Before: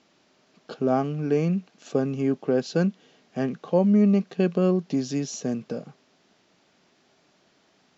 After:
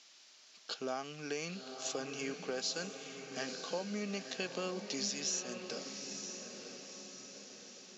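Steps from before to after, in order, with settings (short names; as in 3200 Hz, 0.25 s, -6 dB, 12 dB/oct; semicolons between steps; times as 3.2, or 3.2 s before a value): band-pass 6300 Hz, Q 0.96; compressor, threshold -45 dBFS, peak gain reduction 11.5 dB; on a send: diffused feedback echo 0.943 s, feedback 52%, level -7 dB; on the sum: gain +10.5 dB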